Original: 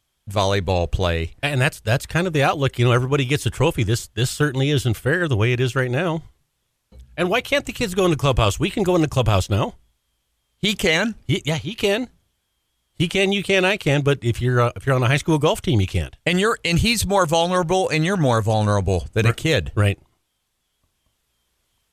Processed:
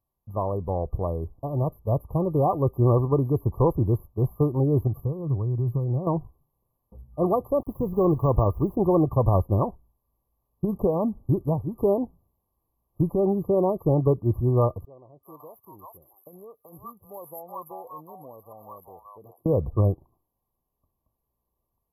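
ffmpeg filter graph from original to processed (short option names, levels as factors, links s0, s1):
-filter_complex "[0:a]asettb=1/sr,asplit=3[s0][s1][s2];[s0]atrim=end=4.874[s3];[s1]atrim=start=4.87:end=6.07,asetpts=PTS-STARTPTS,afade=t=in:d=0.004:c=qsin,afade=t=out:st=1.196:d=0.004:c=qsin,acompressor=threshold=0.0447:ratio=8:attack=3.2:release=140:knee=1:detection=peak,equalizer=f=130:w=1.8:g=11[s4];[s2]atrim=start=6.066[s5];[s3][s4]acrossfade=d=0.004:c1=hsin:c2=qsin[s6];[s6][s5]acrossfade=d=0.004:c1=qsin:c2=hsin,asettb=1/sr,asplit=3[s7][s8][s9];[s7]atrim=end=7.614[s10];[s8]atrim=start=7.61:end=8.76,asetpts=PTS-STARTPTS,afade=t=in:d=0.004:c=qsin,afade=t=out:st=1.146:d=0.004:c=qsin,aeval=exprs='val(0)*gte(abs(val(0)),0.0126)':c=same,deesser=0.7[s11];[s9]atrim=start=8.756[s12];[s10][s11]acrossfade=d=0.004:c1=hsin:c2=qsin[s13];[s13][s12]acrossfade=d=0.004:c1=qsin:c2=hsin,asettb=1/sr,asplit=3[s14][s15][s16];[s14]atrim=end=14.854[s17];[s15]atrim=start=14.85:end=19.46,asetpts=PTS-STARTPTS,afade=t=in:d=0.004:c=qsin,afade=t=out:st=4.606:d=0.004:c=qsin,aderivative,acrossover=split=730[s18][s19];[s19]adelay=380[s20];[s18][s20]amix=inputs=2:normalize=0,atrim=end_sample=203301[s21];[s16]atrim=start=19.456[s22];[s17][s21]acrossfade=d=0.004:c1=hsin:c2=qsin[s23];[s23][s22]acrossfade=d=0.004:c1=qsin:c2=hsin,acrossover=split=8100[s24][s25];[s25]acompressor=threshold=0.00398:ratio=4:attack=1:release=60[s26];[s24][s26]amix=inputs=2:normalize=0,afftfilt=real='re*(1-between(b*sr/4096,1200,11000))':imag='im*(1-between(b*sr/4096,1200,11000))':win_size=4096:overlap=0.75,dynaudnorm=f=330:g=11:m=3.76,volume=0.422"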